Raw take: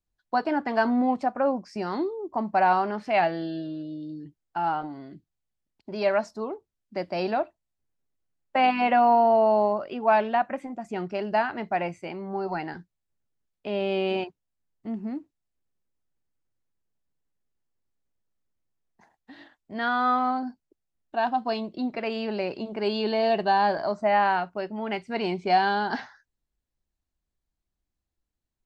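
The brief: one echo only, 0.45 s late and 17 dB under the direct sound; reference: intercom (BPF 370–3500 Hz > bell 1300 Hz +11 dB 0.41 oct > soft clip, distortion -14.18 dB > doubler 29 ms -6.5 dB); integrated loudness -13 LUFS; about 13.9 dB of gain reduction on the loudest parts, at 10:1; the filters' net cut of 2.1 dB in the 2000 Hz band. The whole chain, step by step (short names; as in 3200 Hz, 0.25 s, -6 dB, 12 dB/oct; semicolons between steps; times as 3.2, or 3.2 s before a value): bell 2000 Hz -9 dB; compressor 10:1, threshold -31 dBFS; BPF 370–3500 Hz; bell 1300 Hz +11 dB 0.41 oct; echo 0.45 s -17 dB; soft clip -29.5 dBFS; doubler 29 ms -6.5 dB; gain +25 dB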